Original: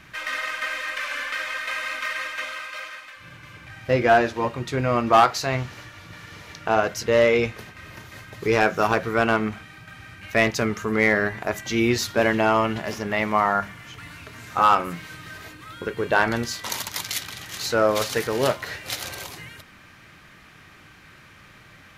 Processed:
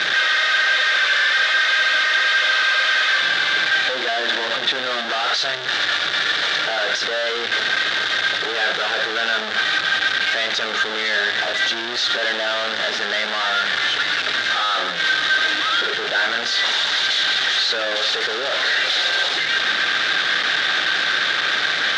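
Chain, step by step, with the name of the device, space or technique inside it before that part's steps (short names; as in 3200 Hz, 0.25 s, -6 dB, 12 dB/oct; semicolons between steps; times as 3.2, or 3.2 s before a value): 3.25–5.05 Chebyshev band-pass 170–3400 Hz, order 2; low shelf 220 Hz +6 dB; home computer beeper (infinite clipping; speaker cabinet 590–4900 Hz, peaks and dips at 1000 Hz -9 dB, 1600 Hz +8 dB, 2400 Hz -4 dB, 3600 Hz +10 dB); gain +4 dB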